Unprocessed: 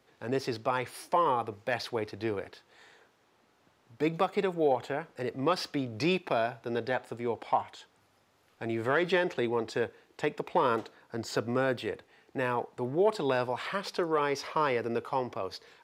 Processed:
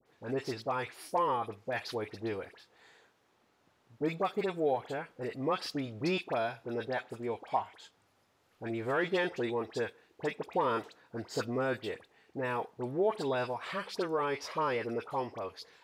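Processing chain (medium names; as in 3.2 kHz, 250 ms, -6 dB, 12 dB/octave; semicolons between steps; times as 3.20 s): phase dispersion highs, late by 61 ms, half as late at 1.6 kHz; trim -3.5 dB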